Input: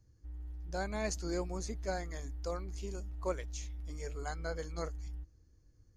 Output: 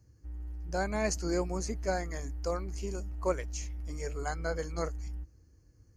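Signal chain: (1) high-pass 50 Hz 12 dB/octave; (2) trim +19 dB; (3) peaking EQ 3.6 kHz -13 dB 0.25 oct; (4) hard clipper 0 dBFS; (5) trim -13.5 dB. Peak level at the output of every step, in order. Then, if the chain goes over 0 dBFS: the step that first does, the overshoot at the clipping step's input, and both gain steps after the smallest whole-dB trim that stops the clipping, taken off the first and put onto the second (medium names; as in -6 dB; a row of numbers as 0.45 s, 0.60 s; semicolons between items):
-22.5 dBFS, -3.5 dBFS, -3.5 dBFS, -3.5 dBFS, -17.0 dBFS; nothing clips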